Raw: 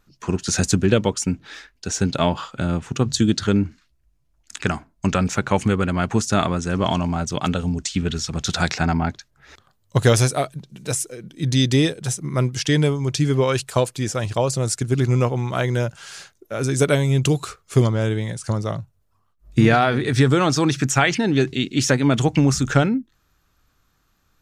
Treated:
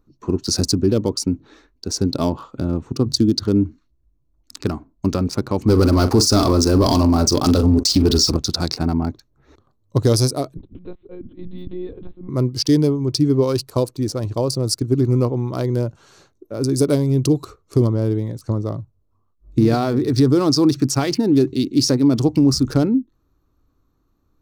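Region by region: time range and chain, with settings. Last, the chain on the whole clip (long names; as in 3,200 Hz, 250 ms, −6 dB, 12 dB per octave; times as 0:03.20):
0:05.68–0:08.37: parametric band 160 Hz −8 dB 0.82 octaves + double-tracking delay 43 ms −13 dB + leveller curve on the samples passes 3
0:10.57–0:12.29: downward compressor 4 to 1, threshold −30 dBFS + one-pitch LPC vocoder at 8 kHz 180 Hz
whole clip: adaptive Wiener filter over 9 samples; drawn EQ curve 110 Hz 0 dB, 180 Hz −4 dB, 290 Hz +6 dB, 770 Hz −7 dB, 1,100 Hz −4 dB, 1,600 Hz −15 dB, 3,300 Hz −11 dB, 4,700 Hz +11 dB, 7,100 Hz −5 dB, 11,000 Hz +5 dB; boost into a limiter +7 dB; level −5.5 dB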